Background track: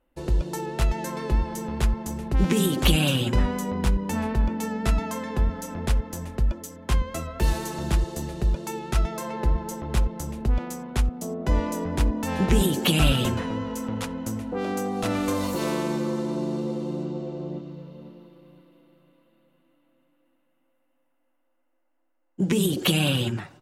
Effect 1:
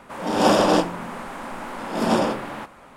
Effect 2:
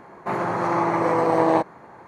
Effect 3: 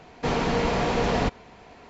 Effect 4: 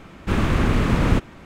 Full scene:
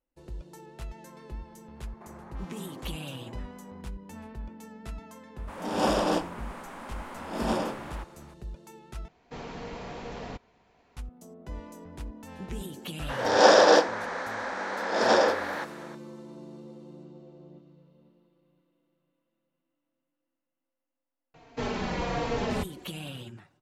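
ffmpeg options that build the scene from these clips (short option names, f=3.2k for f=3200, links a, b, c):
-filter_complex "[1:a]asplit=2[a][b];[3:a]asplit=2[c][d];[0:a]volume=-17dB[e];[2:a]acompressor=threshold=-31dB:ratio=6:attack=3.2:release=140:knee=1:detection=peak[f];[b]highpass=460,equalizer=f=490:t=q:w=4:g=7,equalizer=f=1.1k:t=q:w=4:g=-3,equalizer=f=1.7k:t=q:w=4:g=8,equalizer=f=2.8k:t=q:w=4:g=-7,equalizer=f=4.1k:t=q:w=4:g=5,equalizer=f=5.9k:t=q:w=4:g=6,lowpass=f=6.5k:w=0.5412,lowpass=f=6.5k:w=1.3066[g];[d]asplit=2[h][i];[i]adelay=3.8,afreqshift=-1.2[j];[h][j]amix=inputs=2:normalize=1[k];[e]asplit=2[l][m];[l]atrim=end=9.084[n];[c]atrim=end=1.89,asetpts=PTS-STARTPTS,volume=-15.5dB[o];[m]atrim=start=10.966[p];[f]atrim=end=2.07,asetpts=PTS-STARTPTS,volume=-15.5dB,afade=t=in:d=0.004:c=hsin,afade=t=out:st=2.066:d=0.004:c=hsin,adelay=1750[q];[a]atrim=end=2.96,asetpts=PTS-STARTPTS,volume=-8.5dB,afade=t=in:d=0.004:c=hsin,afade=t=out:st=2.956:d=0.004:c=hsin,adelay=5380[r];[g]atrim=end=2.96,asetpts=PTS-STARTPTS,afade=t=in:d=0.004:c=hsin,afade=t=out:st=2.956:d=0.004:c=hsin,adelay=12990[s];[k]atrim=end=1.89,asetpts=PTS-STARTPTS,volume=-3.5dB,afade=t=in:d=0.004:c=hsin,afade=t=out:st=1.886:d=0.004:c=hsin,adelay=21340[t];[n][o]acrossfade=d=0.004:c1=hsin:c2=hsin[u];[u][p]acrossfade=d=0.004:c1=hsin:c2=hsin[v];[v][q][r][s][t]amix=inputs=5:normalize=0"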